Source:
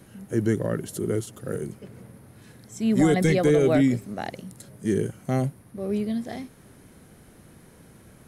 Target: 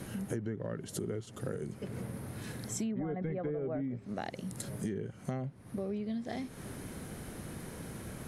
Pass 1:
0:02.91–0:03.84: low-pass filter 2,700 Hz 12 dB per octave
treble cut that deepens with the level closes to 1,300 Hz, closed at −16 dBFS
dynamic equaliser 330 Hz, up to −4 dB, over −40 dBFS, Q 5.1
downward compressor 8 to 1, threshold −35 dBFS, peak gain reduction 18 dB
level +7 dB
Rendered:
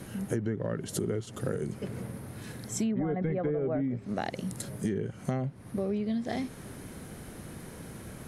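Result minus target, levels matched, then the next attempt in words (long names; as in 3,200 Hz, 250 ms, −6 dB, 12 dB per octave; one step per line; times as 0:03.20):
downward compressor: peak gain reduction −5.5 dB
0:02.91–0:03.84: low-pass filter 2,700 Hz 12 dB per octave
treble cut that deepens with the level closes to 1,300 Hz, closed at −16 dBFS
dynamic equaliser 330 Hz, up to −4 dB, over −40 dBFS, Q 5.1
downward compressor 8 to 1, threshold −41.5 dBFS, peak gain reduction 23.5 dB
level +7 dB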